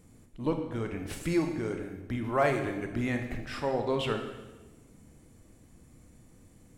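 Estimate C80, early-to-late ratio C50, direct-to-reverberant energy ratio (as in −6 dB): 9.0 dB, 6.5 dB, 4.5 dB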